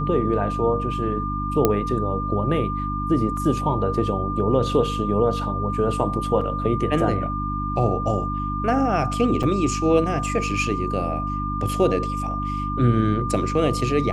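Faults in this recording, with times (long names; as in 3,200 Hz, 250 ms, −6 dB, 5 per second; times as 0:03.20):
mains hum 50 Hz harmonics 6 −28 dBFS
whistle 1,200 Hz −27 dBFS
0:01.65: click −4 dBFS
0:03.37: drop-out 3 ms
0:06.41: drop-out 3.8 ms
0:09.43–0:09.44: drop-out 5.5 ms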